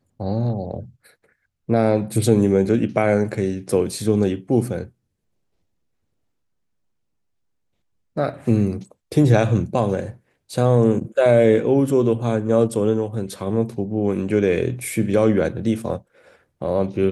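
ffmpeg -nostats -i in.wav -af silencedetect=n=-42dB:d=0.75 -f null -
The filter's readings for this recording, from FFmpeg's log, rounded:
silence_start: 4.89
silence_end: 8.16 | silence_duration: 3.27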